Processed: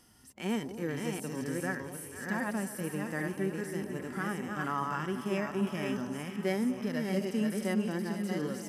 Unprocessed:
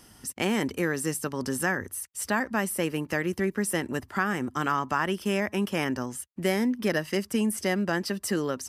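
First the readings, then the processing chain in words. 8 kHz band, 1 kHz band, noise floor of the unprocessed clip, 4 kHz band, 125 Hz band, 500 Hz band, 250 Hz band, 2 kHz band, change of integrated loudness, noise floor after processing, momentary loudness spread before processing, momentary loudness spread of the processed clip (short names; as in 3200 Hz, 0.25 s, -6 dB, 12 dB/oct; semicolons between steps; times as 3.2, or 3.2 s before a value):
-11.5 dB, -7.0 dB, -56 dBFS, -9.0 dB, -3.5 dB, -6.0 dB, -4.0 dB, -8.5 dB, -6.0 dB, -46 dBFS, 4 LU, 5 LU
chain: reverse delay 0.401 s, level -3.5 dB; echo with dull and thin repeats by turns 0.243 s, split 900 Hz, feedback 79%, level -11.5 dB; harmonic-percussive split percussive -17 dB; gain -4.5 dB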